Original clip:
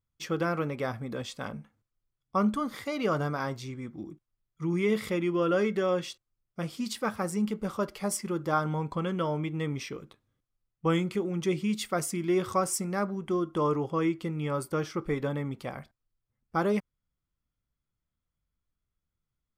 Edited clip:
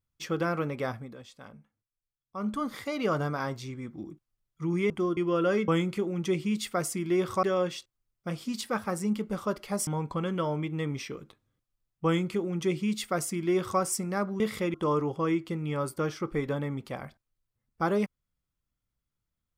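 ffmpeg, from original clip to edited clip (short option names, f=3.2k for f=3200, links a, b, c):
-filter_complex "[0:a]asplit=10[a][b][c][d][e][f][g][h][i][j];[a]atrim=end=1.15,asetpts=PTS-STARTPTS,afade=t=out:st=0.89:d=0.26:silence=0.266073[k];[b]atrim=start=1.15:end=2.37,asetpts=PTS-STARTPTS,volume=-11.5dB[l];[c]atrim=start=2.37:end=4.902,asetpts=PTS-STARTPTS,afade=t=in:d=0.26:silence=0.266073[m];[d]atrim=start=13.208:end=13.482[n];[e]atrim=start=5.238:end=5.752[o];[f]atrim=start=10.858:end=12.612[p];[g]atrim=start=5.748:end=8.192[q];[h]atrim=start=8.678:end=13.212[r];[i]atrim=start=4.898:end=5.242[s];[j]atrim=start=13.478[t];[k][l][m]concat=n=3:v=0:a=1[u];[u][n]acrossfade=d=0.004:c1=hsin:c2=hsin[v];[v][o]acrossfade=d=0.004:c1=hsin:c2=hsin[w];[w][p]acrossfade=d=0.004:c1=hsin:c2=hsin[x];[x][q]acrossfade=d=0.004:c1=hsin:c2=hsin[y];[y][r]acrossfade=d=0.004:c1=hsin:c2=hsin[z];[z][s]acrossfade=d=0.004:c1=hsin:c2=hsin[aa];[aa][t]acrossfade=d=0.004:c1=hsin:c2=hsin"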